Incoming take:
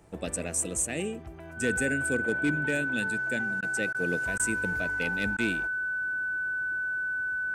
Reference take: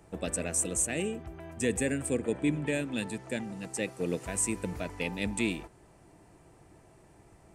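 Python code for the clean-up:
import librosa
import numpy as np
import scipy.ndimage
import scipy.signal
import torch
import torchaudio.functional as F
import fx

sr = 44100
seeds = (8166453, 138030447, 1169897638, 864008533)

y = fx.fix_declip(x, sr, threshold_db=-18.5)
y = fx.fix_declick_ar(y, sr, threshold=6.5)
y = fx.notch(y, sr, hz=1500.0, q=30.0)
y = fx.fix_interpolate(y, sr, at_s=(3.61, 3.93, 4.38, 5.37), length_ms=14.0)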